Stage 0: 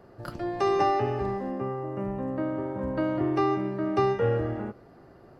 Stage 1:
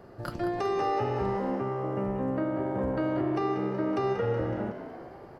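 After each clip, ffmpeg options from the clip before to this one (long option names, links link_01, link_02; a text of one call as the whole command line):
ffmpeg -i in.wav -filter_complex "[0:a]alimiter=limit=-23dB:level=0:latency=1:release=308,asplit=2[link_01][link_02];[link_02]asplit=7[link_03][link_04][link_05][link_06][link_07][link_08][link_09];[link_03]adelay=186,afreqshift=66,volume=-11dB[link_10];[link_04]adelay=372,afreqshift=132,volume=-15.4dB[link_11];[link_05]adelay=558,afreqshift=198,volume=-19.9dB[link_12];[link_06]adelay=744,afreqshift=264,volume=-24.3dB[link_13];[link_07]adelay=930,afreqshift=330,volume=-28.7dB[link_14];[link_08]adelay=1116,afreqshift=396,volume=-33.2dB[link_15];[link_09]adelay=1302,afreqshift=462,volume=-37.6dB[link_16];[link_10][link_11][link_12][link_13][link_14][link_15][link_16]amix=inputs=7:normalize=0[link_17];[link_01][link_17]amix=inputs=2:normalize=0,volume=2.5dB" out.wav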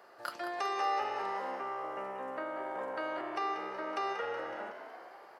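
ffmpeg -i in.wav -af "highpass=890,volume=1.5dB" out.wav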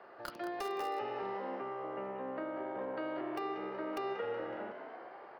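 ffmpeg -i in.wav -filter_complex "[0:a]lowshelf=frequency=490:gain=5,acrossover=split=490|3000[link_01][link_02][link_03];[link_02]acompressor=threshold=-51dB:ratio=2[link_04];[link_01][link_04][link_03]amix=inputs=3:normalize=0,acrossover=split=190|3700[link_05][link_06][link_07];[link_07]acrusher=bits=5:dc=4:mix=0:aa=0.000001[link_08];[link_05][link_06][link_08]amix=inputs=3:normalize=0,volume=1.5dB" out.wav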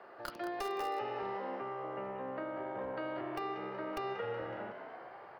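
ffmpeg -i in.wav -af "asubboost=boost=6.5:cutoff=110,volume=1dB" out.wav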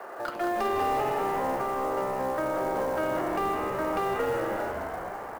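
ffmpeg -i in.wav -filter_complex "[0:a]asplit=2[link_01][link_02];[link_02]highpass=frequency=720:poles=1,volume=15dB,asoftclip=type=tanh:threshold=-25dB[link_03];[link_01][link_03]amix=inputs=2:normalize=0,lowpass=frequency=1000:poles=1,volume=-6dB,acrossover=split=300|7900[link_04][link_05][link_06];[link_05]acrusher=bits=5:mode=log:mix=0:aa=0.000001[link_07];[link_04][link_07][link_06]amix=inputs=3:normalize=0,asplit=8[link_08][link_09][link_10][link_11][link_12][link_13][link_14][link_15];[link_09]adelay=158,afreqshift=-130,volume=-11.5dB[link_16];[link_10]adelay=316,afreqshift=-260,volume=-16.1dB[link_17];[link_11]adelay=474,afreqshift=-390,volume=-20.7dB[link_18];[link_12]adelay=632,afreqshift=-520,volume=-25.2dB[link_19];[link_13]adelay=790,afreqshift=-650,volume=-29.8dB[link_20];[link_14]adelay=948,afreqshift=-780,volume=-34.4dB[link_21];[link_15]adelay=1106,afreqshift=-910,volume=-39dB[link_22];[link_08][link_16][link_17][link_18][link_19][link_20][link_21][link_22]amix=inputs=8:normalize=0,volume=8dB" out.wav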